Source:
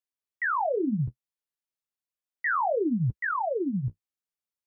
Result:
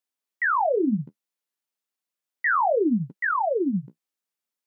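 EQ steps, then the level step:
linear-phase brick-wall high-pass 160 Hz
+4.5 dB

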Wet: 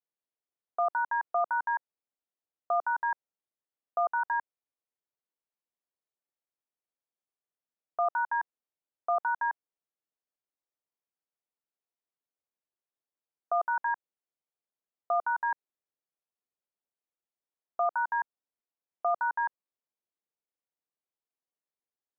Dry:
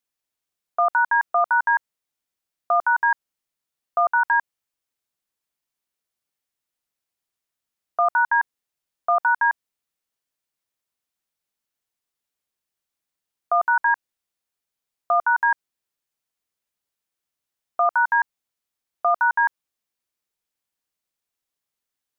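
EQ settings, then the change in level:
resonant band-pass 500 Hz, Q 0.77
−5.5 dB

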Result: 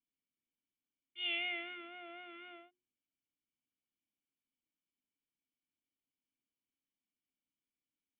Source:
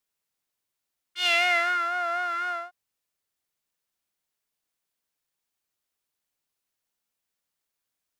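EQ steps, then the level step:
formant resonators in series i
mains-hum notches 60/120/180/240/300/360 Hz
+5.0 dB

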